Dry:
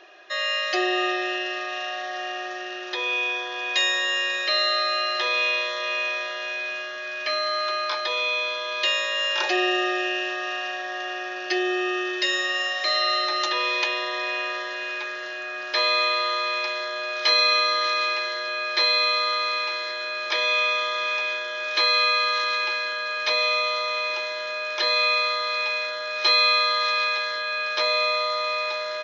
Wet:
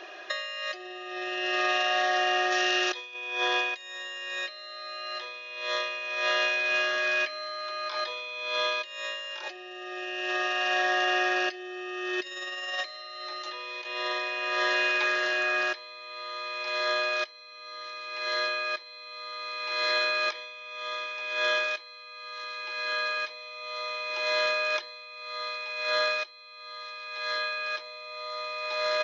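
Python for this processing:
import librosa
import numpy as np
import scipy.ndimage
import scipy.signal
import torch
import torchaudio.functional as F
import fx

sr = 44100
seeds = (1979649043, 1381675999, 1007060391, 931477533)

y = fx.high_shelf(x, sr, hz=2800.0, db=9.5, at=(2.52, 3.14))
y = fx.over_compress(y, sr, threshold_db=-31.0, ratio=-0.5)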